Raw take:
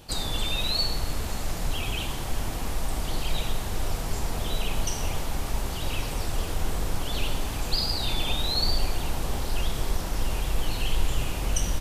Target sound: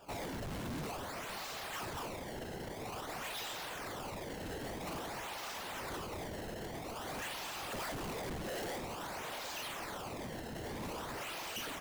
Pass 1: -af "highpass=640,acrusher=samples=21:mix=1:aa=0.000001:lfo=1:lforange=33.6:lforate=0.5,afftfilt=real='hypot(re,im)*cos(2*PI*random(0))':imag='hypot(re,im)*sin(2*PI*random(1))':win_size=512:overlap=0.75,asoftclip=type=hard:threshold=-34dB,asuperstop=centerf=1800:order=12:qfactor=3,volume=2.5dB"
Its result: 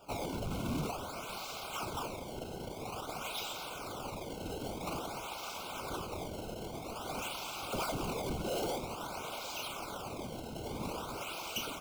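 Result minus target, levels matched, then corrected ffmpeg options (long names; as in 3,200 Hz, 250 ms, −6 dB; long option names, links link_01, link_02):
2,000 Hz band −4.0 dB; hard clipping: distortion −6 dB
-af "highpass=640,acrusher=samples=21:mix=1:aa=0.000001:lfo=1:lforange=33.6:lforate=0.5,afftfilt=real='hypot(re,im)*cos(2*PI*random(0))':imag='hypot(re,im)*sin(2*PI*random(1))':win_size=512:overlap=0.75,asoftclip=type=hard:threshold=-41dB,volume=2.5dB"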